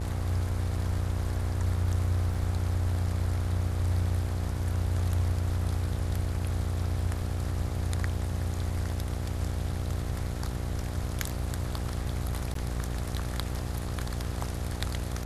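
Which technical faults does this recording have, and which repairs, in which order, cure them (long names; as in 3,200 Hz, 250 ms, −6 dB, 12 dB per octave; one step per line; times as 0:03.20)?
mains buzz 60 Hz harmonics 14 −34 dBFS
0:02.34: drop-out 2.3 ms
0:12.54–0:12.55: drop-out 13 ms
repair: hum removal 60 Hz, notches 14
repair the gap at 0:02.34, 2.3 ms
repair the gap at 0:12.54, 13 ms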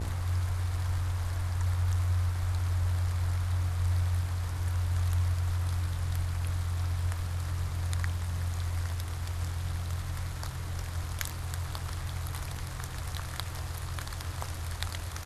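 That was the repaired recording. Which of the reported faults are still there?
none of them is left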